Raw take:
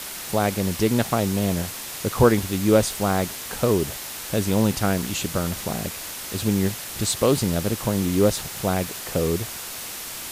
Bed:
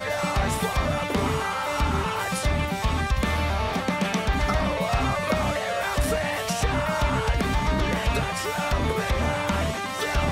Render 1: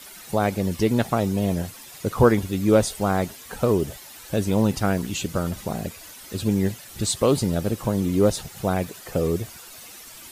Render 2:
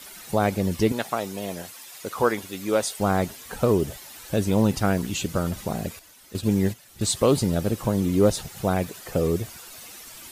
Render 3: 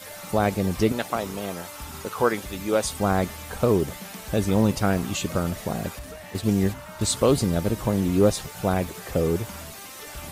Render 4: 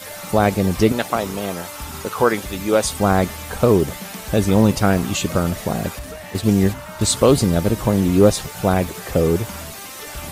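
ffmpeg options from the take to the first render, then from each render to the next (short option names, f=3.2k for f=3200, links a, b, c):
-af "afftdn=nr=12:nf=-34"
-filter_complex "[0:a]asettb=1/sr,asplit=3[a][b][c];[a]atrim=end=0.924[d];[b]atrim=start=0.92:end=3,asetpts=PTS-STARTPTS,afade=t=in:d=0.004:c=qsin,afade=t=out:st=2.076:d=0.004:c=qsin,highpass=f=710:p=1[e];[c]atrim=start=2.996[f];[d][e]acrossfade=d=0.004:c1=hsin:c2=qsin[g];[g][f]acrossfade=d=0.004:c1=qsin:c2=hsin,asettb=1/sr,asplit=3[h][i][j];[h]atrim=end=5.994[k];[i]atrim=start=5.99:end=7.07,asetpts=PTS-STARTPTS,afade=t=in:d=0.004:c=qsin,afade=t=out:st=1.076:d=0.004:c=qsin,agate=range=-9dB:threshold=-31dB:ratio=16:release=100:detection=peak[l];[j]atrim=start=7.066[m];[k][l]acrossfade=d=0.004:c1=hsin:c2=qsin[n];[n][m]acrossfade=d=0.004:c1=qsin:c2=hsin"
-filter_complex "[1:a]volume=-15.5dB[a];[0:a][a]amix=inputs=2:normalize=0"
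-af "volume=6dB,alimiter=limit=-2dB:level=0:latency=1"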